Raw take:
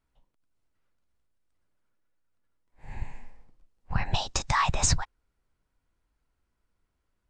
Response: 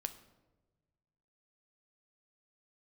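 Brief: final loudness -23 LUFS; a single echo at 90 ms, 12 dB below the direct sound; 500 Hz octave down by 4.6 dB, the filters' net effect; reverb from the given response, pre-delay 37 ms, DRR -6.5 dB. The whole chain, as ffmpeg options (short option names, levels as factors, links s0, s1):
-filter_complex "[0:a]equalizer=f=500:t=o:g=-6.5,aecho=1:1:90:0.251,asplit=2[s0][s1];[1:a]atrim=start_sample=2205,adelay=37[s2];[s1][s2]afir=irnorm=-1:irlink=0,volume=2.51[s3];[s0][s3]amix=inputs=2:normalize=0,volume=0.794"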